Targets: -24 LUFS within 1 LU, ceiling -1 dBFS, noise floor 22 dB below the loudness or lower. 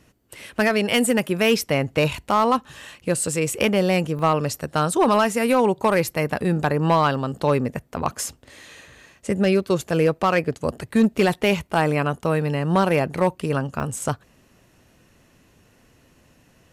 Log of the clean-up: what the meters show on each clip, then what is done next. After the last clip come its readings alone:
clipped 0.5%; flat tops at -10.5 dBFS; dropouts 3; longest dropout 1.1 ms; loudness -21.5 LUFS; peak -10.5 dBFS; loudness target -24.0 LUFS
-> clip repair -10.5 dBFS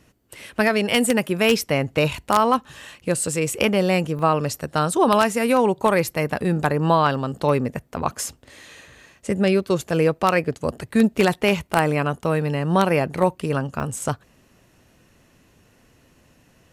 clipped 0.0%; dropouts 3; longest dropout 1.1 ms
-> interpolate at 4.19/8.29/13.8, 1.1 ms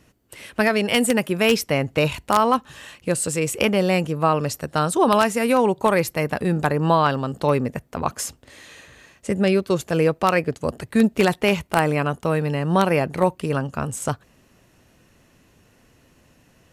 dropouts 0; loudness -21.0 LUFS; peak -1.5 dBFS; loudness target -24.0 LUFS
-> gain -3 dB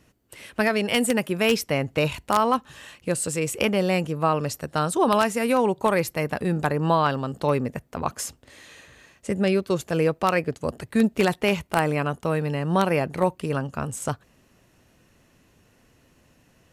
loudness -24.0 LUFS; peak -4.5 dBFS; noise floor -61 dBFS

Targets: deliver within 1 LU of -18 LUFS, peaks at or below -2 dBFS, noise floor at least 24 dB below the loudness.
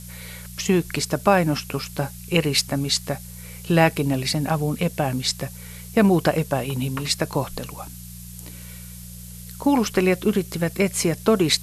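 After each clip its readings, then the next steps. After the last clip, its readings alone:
hum 60 Hz; harmonics up to 180 Hz; hum level -38 dBFS; noise floor -39 dBFS; noise floor target -46 dBFS; loudness -22.0 LUFS; peak -3.0 dBFS; loudness target -18.0 LUFS
-> de-hum 60 Hz, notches 3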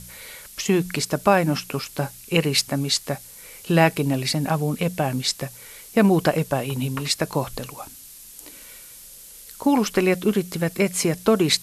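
hum none; noise floor -44 dBFS; noise floor target -47 dBFS
-> noise print and reduce 6 dB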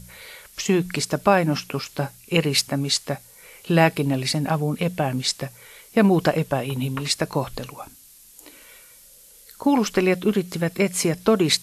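noise floor -50 dBFS; loudness -22.5 LUFS; peak -3.0 dBFS; loudness target -18.0 LUFS
-> gain +4.5 dB; limiter -2 dBFS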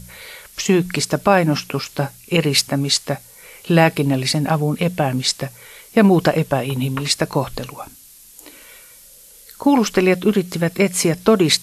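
loudness -18.0 LUFS; peak -2.0 dBFS; noise floor -45 dBFS

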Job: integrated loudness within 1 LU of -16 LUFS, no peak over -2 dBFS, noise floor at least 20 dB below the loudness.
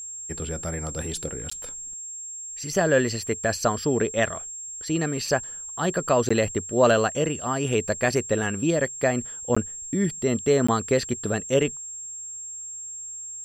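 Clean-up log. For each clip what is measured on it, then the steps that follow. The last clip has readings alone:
dropouts 4; longest dropout 15 ms; steady tone 7500 Hz; tone level -34 dBFS; loudness -25.5 LUFS; peak -7.5 dBFS; loudness target -16.0 LUFS
-> interpolate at 1.5/6.29/9.55/10.67, 15 ms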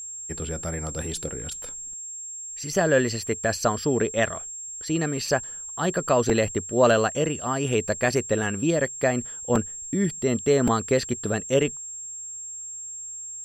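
dropouts 0; steady tone 7500 Hz; tone level -34 dBFS
-> notch 7500 Hz, Q 30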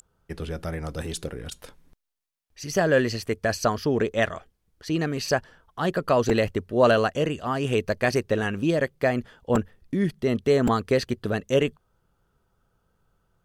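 steady tone none; loudness -25.0 LUFS; peak -7.5 dBFS; loudness target -16.0 LUFS
-> gain +9 dB; limiter -2 dBFS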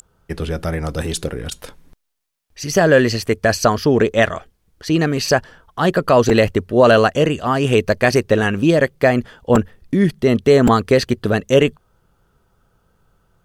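loudness -16.5 LUFS; peak -2.0 dBFS; noise floor -63 dBFS

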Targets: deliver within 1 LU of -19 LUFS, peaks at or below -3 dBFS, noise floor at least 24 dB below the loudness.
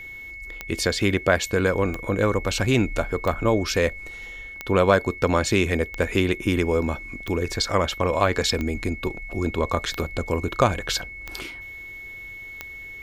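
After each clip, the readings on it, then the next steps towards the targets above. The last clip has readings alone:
clicks 10; steady tone 2200 Hz; tone level -36 dBFS; loudness -23.5 LUFS; peak -4.5 dBFS; loudness target -19.0 LUFS
-> de-click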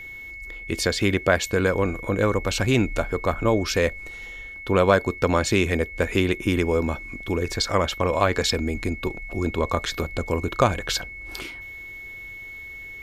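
clicks 0; steady tone 2200 Hz; tone level -36 dBFS
-> notch 2200 Hz, Q 30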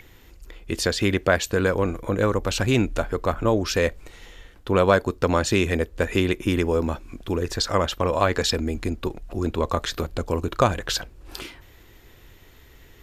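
steady tone none; loudness -23.5 LUFS; peak -4.0 dBFS; loudness target -19.0 LUFS
-> gain +4.5 dB; limiter -3 dBFS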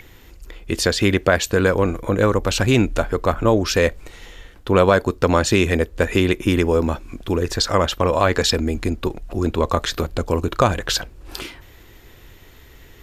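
loudness -19.5 LUFS; peak -3.0 dBFS; noise floor -46 dBFS

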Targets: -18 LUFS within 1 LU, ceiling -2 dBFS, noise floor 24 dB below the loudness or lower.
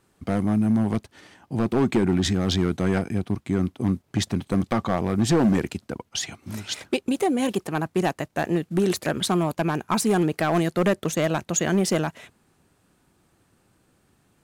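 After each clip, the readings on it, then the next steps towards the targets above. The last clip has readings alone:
clipped 1.4%; flat tops at -14.5 dBFS; loudness -24.5 LUFS; peak -14.5 dBFS; loudness target -18.0 LUFS
-> clip repair -14.5 dBFS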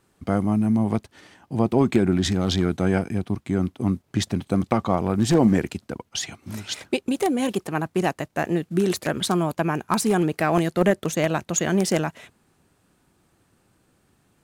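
clipped 0.0%; loudness -23.5 LUFS; peak -5.5 dBFS; loudness target -18.0 LUFS
-> gain +5.5 dB; limiter -2 dBFS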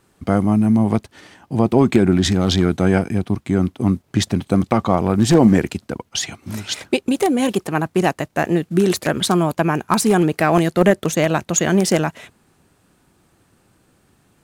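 loudness -18.0 LUFS; peak -2.0 dBFS; noise floor -60 dBFS

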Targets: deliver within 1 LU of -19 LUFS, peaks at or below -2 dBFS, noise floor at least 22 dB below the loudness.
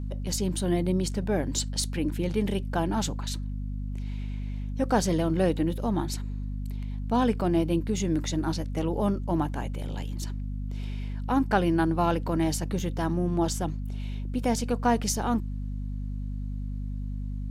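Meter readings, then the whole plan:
hum 50 Hz; harmonics up to 250 Hz; hum level -30 dBFS; loudness -29.0 LUFS; peak -10.5 dBFS; loudness target -19.0 LUFS
-> notches 50/100/150/200/250 Hz; gain +10 dB; limiter -2 dBFS

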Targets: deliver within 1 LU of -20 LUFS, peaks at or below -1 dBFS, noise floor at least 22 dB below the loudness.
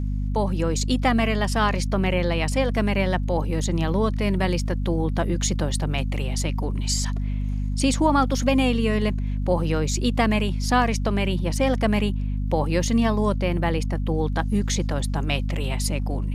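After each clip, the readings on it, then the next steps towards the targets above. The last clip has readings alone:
ticks 32/s; hum 50 Hz; harmonics up to 250 Hz; hum level -23 dBFS; loudness -23.5 LUFS; peak -6.5 dBFS; loudness target -20.0 LUFS
-> de-click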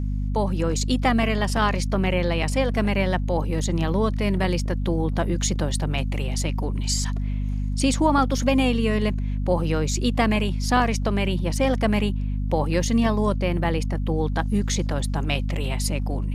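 ticks 0/s; hum 50 Hz; harmonics up to 250 Hz; hum level -23 dBFS
-> notches 50/100/150/200/250 Hz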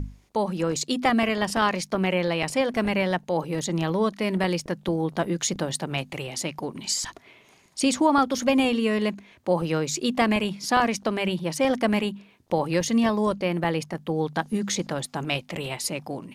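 hum none; loudness -25.5 LUFS; peak -8.0 dBFS; loudness target -20.0 LUFS
-> gain +5.5 dB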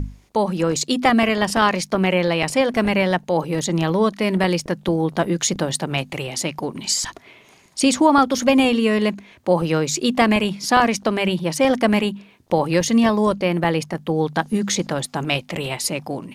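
loudness -20.0 LUFS; peak -2.5 dBFS; noise floor -52 dBFS

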